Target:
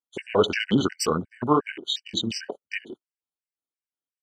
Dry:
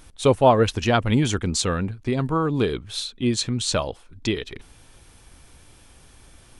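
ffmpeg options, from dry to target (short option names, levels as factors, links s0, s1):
-filter_complex "[0:a]flanger=delay=19:depth=5.6:speed=1.5,asetrate=40517,aresample=44100,asplit=2[s0][s1];[s1]adelay=115,lowpass=f=830:p=1,volume=0.141,asplit=2[s2][s3];[s3]adelay=115,lowpass=f=830:p=1,volume=0.32,asplit=2[s4][s5];[s5]adelay=115,lowpass=f=830:p=1,volume=0.32[s6];[s0][s2][s4][s6]amix=inputs=4:normalize=0,agate=range=0.0224:threshold=0.00891:ratio=16:detection=peak,highpass=260,atempo=1.7,afwtdn=0.0126,afftfilt=real='re*gt(sin(2*PI*2.8*pts/sr)*(1-2*mod(floor(b*sr/1024/1500),2)),0)':imag='im*gt(sin(2*PI*2.8*pts/sr)*(1-2*mod(floor(b*sr/1024/1500),2)),0)':win_size=1024:overlap=0.75,volume=2.37"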